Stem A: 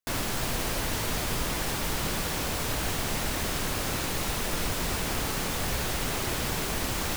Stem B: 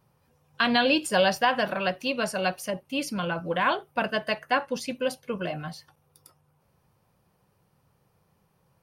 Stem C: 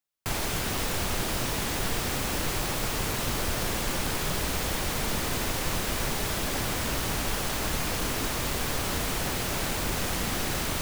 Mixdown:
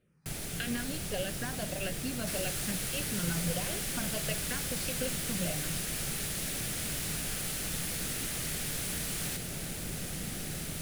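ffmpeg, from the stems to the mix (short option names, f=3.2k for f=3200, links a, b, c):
-filter_complex "[0:a]highpass=1k,adelay=2200,volume=-7dB[a];[1:a]lowpass=5.2k,acompressor=threshold=-30dB:ratio=6,asplit=2[b][c];[c]afreqshift=-1.6[d];[b][d]amix=inputs=2:normalize=1,volume=-1dB[e];[2:a]volume=-10.5dB[f];[a][e][f]amix=inputs=3:normalize=0,equalizer=f=160:t=o:w=0.67:g=9,equalizer=f=1k:t=o:w=0.67:g=-11,equalizer=f=10k:t=o:w=0.67:g=8"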